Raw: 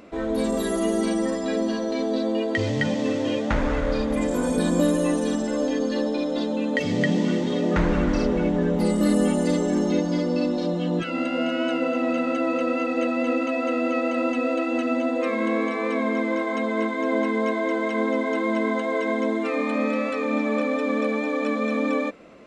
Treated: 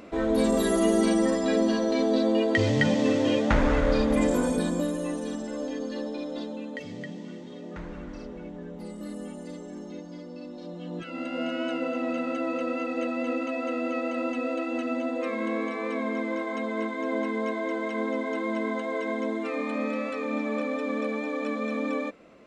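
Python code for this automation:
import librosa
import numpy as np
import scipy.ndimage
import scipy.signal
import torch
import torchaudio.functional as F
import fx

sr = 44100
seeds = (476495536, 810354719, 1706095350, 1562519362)

y = fx.gain(x, sr, db=fx.line((4.29, 1.0), (4.88, -8.5), (6.39, -8.5), (7.16, -17.5), (10.42, -17.5), (11.44, -5.5)))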